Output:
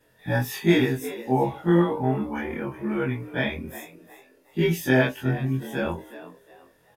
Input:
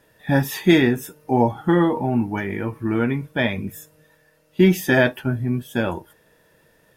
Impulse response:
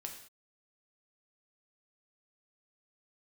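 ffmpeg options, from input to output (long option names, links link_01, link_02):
-filter_complex "[0:a]afftfilt=real='re':imag='-im':win_size=2048:overlap=0.75,asplit=4[link_01][link_02][link_03][link_04];[link_02]adelay=364,afreqshift=91,volume=-15dB[link_05];[link_03]adelay=728,afreqshift=182,volume=-25.2dB[link_06];[link_04]adelay=1092,afreqshift=273,volume=-35.3dB[link_07];[link_01][link_05][link_06][link_07]amix=inputs=4:normalize=0"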